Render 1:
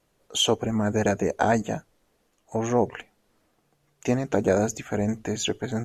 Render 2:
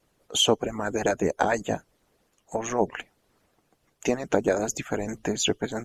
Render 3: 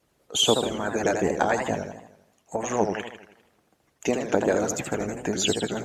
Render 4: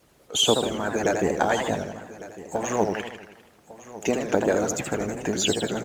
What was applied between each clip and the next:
harmonic-percussive split harmonic -17 dB; in parallel at -1 dB: compression, threshold -32 dBFS, peak gain reduction 14.5 dB
high-pass 43 Hz; modulated delay 81 ms, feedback 52%, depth 194 cents, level -6 dB
companding laws mixed up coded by mu; delay 1153 ms -17 dB

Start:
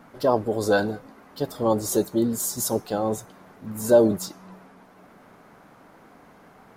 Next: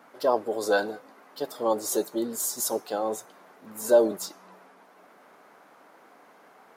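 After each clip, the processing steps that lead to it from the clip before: high-pass 380 Hz 12 dB/octave; trim -1.5 dB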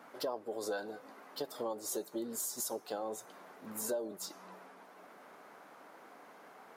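compression 5:1, threshold -35 dBFS, peak gain reduction 19 dB; trim -1 dB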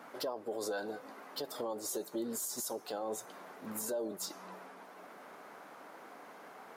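peak limiter -32 dBFS, peak gain reduction 7.5 dB; trim +3.5 dB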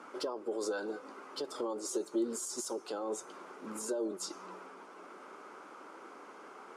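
cabinet simulation 220–9200 Hz, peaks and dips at 360 Hz +7 dB, 690 Hz -8 dB, 1.3 kHz +5 dB, 1.8 kHz -7 dB, 3.9 kHz -5 dB; trim +1.5 dB

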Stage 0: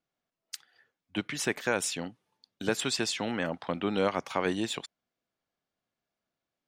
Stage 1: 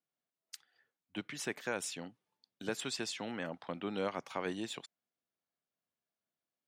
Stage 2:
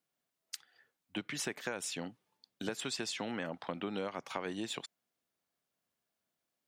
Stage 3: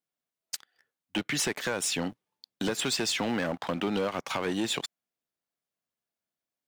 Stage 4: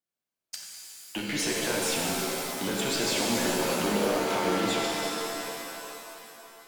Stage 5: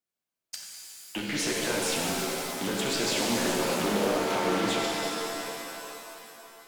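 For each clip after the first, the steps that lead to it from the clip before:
high-pass 100 Hz; trim -8.5 dB
compression, threshold -40 dBFS, peak gain reduction 10 dB; trim +6 dB
waveshaping leveller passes 3
pitch-shifted reverb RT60 2.9 s, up +7 st, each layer -2 dB, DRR -2.5 dB; trim -4 dB
loudspeaker Doppler distortion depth 0.22 ms

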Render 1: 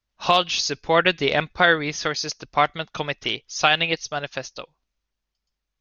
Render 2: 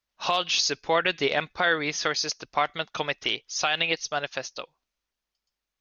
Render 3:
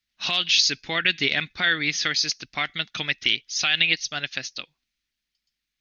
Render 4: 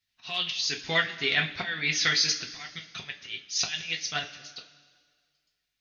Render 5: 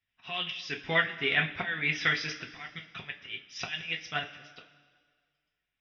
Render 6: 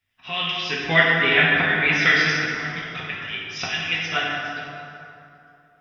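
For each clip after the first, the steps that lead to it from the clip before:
bass shelf 200 Hz -11.5 dB; peak limiter -12 dBFS, peak gain reduction 9 dB
ten-band graphic EQ 125 Hz +3 dB, 250 Hz +5 dB, 500 Hz -10 dB, 1 kHz -10 dB, 2 kHz +7 dB, 4 kHz +6 dB
slow attack 343 ms; two-slope reverb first 0.21 s, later 1.8 s, from -19 dB, DRR -1 dB; trim -3 dB
Savitzky-Golay filter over 25 samples
plate-style reverb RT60 2.8 s, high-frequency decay 0.5×, DRR -3.5 dB; trim +6.5 dB

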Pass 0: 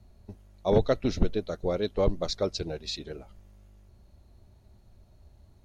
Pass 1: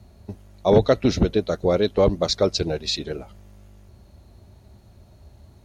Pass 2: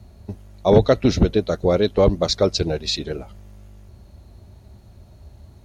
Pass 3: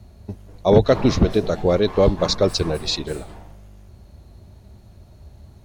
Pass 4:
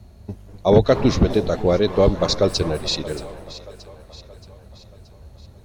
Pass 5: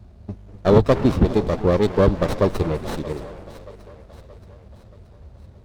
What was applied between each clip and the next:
high-pass 58 Hz; in parallel at -1 dB: peak limiter -20 dBFS, peak gain reduction 10 dB; on the sum: trim +4 dB
bass shelf 120 Hz +4 dB; trim +1.5 dB
on a send at -11.5 dB: full-wave rectifier + reverberation RT60 0.75 s, pre-delay 191 ms
two-band feedback delay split 460 Hz, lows 248 ms, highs 626 ms, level -16 dB
distance through air 58 m; sliding maximum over 17 samples

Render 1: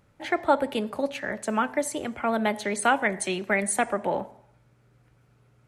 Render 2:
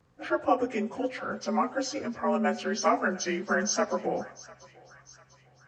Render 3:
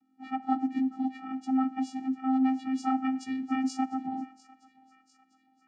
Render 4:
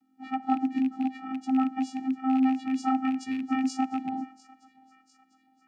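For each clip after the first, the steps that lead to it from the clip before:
frequency axis rescaled in octaves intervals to 88%; thinning echo 699 ms, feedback 60%, high-pass 1 kHz, level -18.5 dB
vocoder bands 8, square 262 Hz
rattle on loud lows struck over -36 dBFS, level -35 dBFS; trim +2 dB

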